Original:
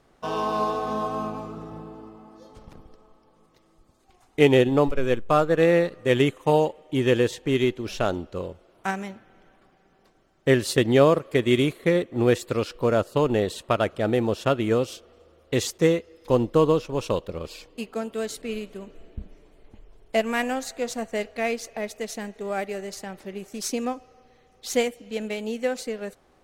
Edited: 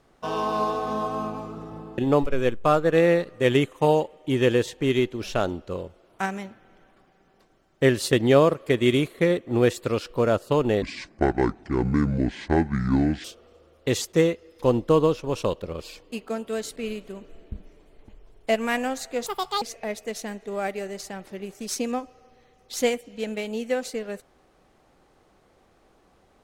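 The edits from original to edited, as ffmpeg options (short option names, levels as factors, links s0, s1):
-filter_complex "[0:a]asplit=6[s0][s1][s2][s3][s4][s5];[s0]atrim=end=1.982[s6];[s1]atrim=start=4.628:end=13.474[s7];[s2]atrim=start=13.47:end=14.9,asetpts=PTS-STARTPTS,asetrate=26019,aresample=44100,atrim=end_sample=106886,asetpts=PTS-STARTPTS[s8];[s3]atrim=start=14.896:end=20.924[s9];[s4]atrim=start=20.92:end=21.55,asetpts=PTS-STARTPTS,asetrate=78498,aresample=44100,atrim=end_sample=15608,asetpts=PTS-STARTPTS[s10];[s5]atrim=start=21.546[s11];[s6][s7]acrossfade=d=0.004:c1=hsin:c2=hsin[s12];[s12][s8]acrossfade=d=0.004:c1=hsin:c2=hsin[s13];[s13][s9]acrossfade=d=0.004:c1=hsin:c2=hsin[s14];[s14][s10]acrossfade=d=0.004:c1=hsin:c2=hsin[s15];[s15][s11]acrossfade=d=0.004:c1=hsin:c2=hsin"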